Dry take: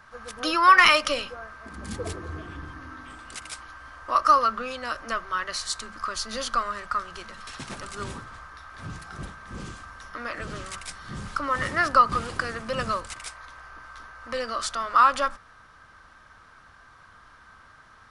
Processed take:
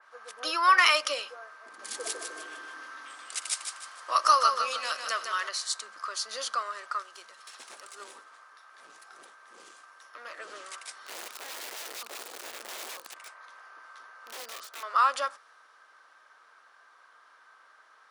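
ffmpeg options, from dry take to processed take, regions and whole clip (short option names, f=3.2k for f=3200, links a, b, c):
-filter_complex "[0:a]asettb=1/sr,asplit=3[a][b][c];[a]atrim=end=1.794[d];[b]atrim=start=1.79:end=5.49,asetpts=PTS-STARTPTS,afade=t=in:d=0.004:c=qsin,afade=t=out:st=3.696:d=0.004:c=qsin,highshelf=f=2.3k:g=10,aecho=1:1:153|306|459|612|765:0.501|0.205|0.0842|0.0345|0.0142,atrim=end_sample=163170[e];[c]atrim=start=5.486[f];[d][e]acrossfade=d=0.004:c1=hsin:c2=qsin[g];[g][f]acrossfade=d=0.004:c1=qsin:c2=hsin,asettb=1/sr,asplit=3[h][i][j];[h]atrim=end=7.024[k];[i]atrim=start=7.02:end=10.39,asetpts=PTS-STARTPTS,afade=t=in:d=0.004:c=qsin,afade=t=out:st=3.366:d=0.004:c=qsin,highshelf=f=7.2k:g=7.5,aeval=exprs='(tanh(12.6*val(0)+0.75)-tanh(0.75))/12.6':c=same[l];[j]atrim=start=10.386[m];[k][l]acrossfade=d=0.004:c1=hsin:c2=qsin[n];[n][m]acrossfade=d=0.004:c1=qsin:c2=hsin,asettb=1/sr,asplit=3[o][p][q];[o]atrim=end=10.964[r];[p]atrim=start=10.96:end=14.83,asetpts=PTS-STARTPTS,afade=t=in:d=0.004:c=qsin,afade=t=out:st=3.866:d=0.004:c=qsin,equalizer=f=83:w=0.81:g=12,acrossover=split=290|2700[s][t][u];[s]acompressor=threshold=-30dB:ratio=4[v];[t]acompressor=threshold=-37dB:ratio=4[w];[u]acompressor=threshold=-47dB:ratio=4[x];[v][w][x]amix=inputs=3:normalize=0,aeval=exprs='(mod(33.5*val(0)+1,2)-1)/33.5':c=same[y];[q]atrim=start=14.826[z];[r][y]acrossfade=d=0.004:c1=hsin:c2=qsin[aa];[aa][z]acrossfade=d=0.004:c1=qsin:c2=hsin,highpass=f=410:w=0.5412,highpass=f=410:w=1.3066,adynamicequalizer=threshold=0.0126:dfrequency=3400:dqfactor=0.7:tfrequency=3400:tqfactor=0.7:attack=5:release=100:ratio=0.375:range=2.5:mode=boostabove:tftype=highshelf,volume=-5.5dB"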